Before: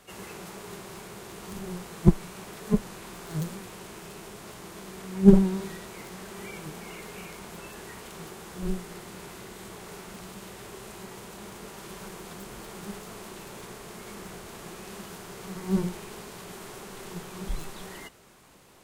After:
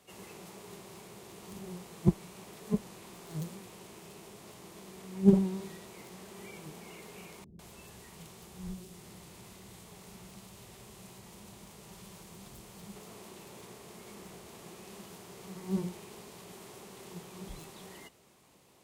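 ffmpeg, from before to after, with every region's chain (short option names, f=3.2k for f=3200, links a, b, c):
-filter_complex "[0:a]asettb=1/sr,asplit=3[a][b][c];[a]atrim=end=7.444[d];[b]atrim=start=7.44:end=12.96,asetpts=PTS-STARTPTS,afade=t=in:d=0.004:c=qsin,afade=t=out:st=5.516:d=0.004:c=qsin,lowshelf=f=140:g=6.5,acrossover=split=170|3000[e][f][g];[f]acompressor=threshold=-45dB:ratio=2:attack=3.2:release=140:knee=2.83:detection=peak[h];[e][h][g]amix=inputs=3:normalize=0,acrossover=split=360[i][j];[j]adelay=150[k];[i][k]amix=inputs=2:normalize=0,atrim=end_sample=243432[l];[c]atrim=start=12.956[m];[d][l]acrossfade=d=0.004:c1=hsin:c2=qsin[n];[n][m]acrossfade=d=0.004:c1=qsin:c2=hsin,highpass=65,equalizer=f=1.5k:t=o:w=0.6:g=-6.5,volume=-6.5dB"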